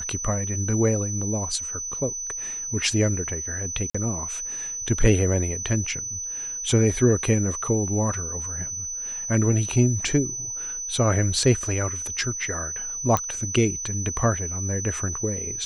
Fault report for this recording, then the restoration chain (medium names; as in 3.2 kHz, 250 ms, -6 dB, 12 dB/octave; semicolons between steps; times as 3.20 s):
whine 6 kHz -29 dBFS
3.90–3.94 s: dropout 45 ms
13.17 s: pop -8 dBFS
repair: de-click; band-stop 6 kHz, Q 30; interpolate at 3.90 s, 45 ms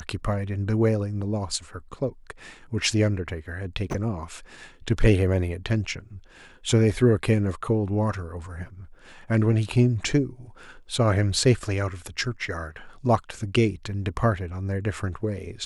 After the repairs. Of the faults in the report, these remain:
nothing left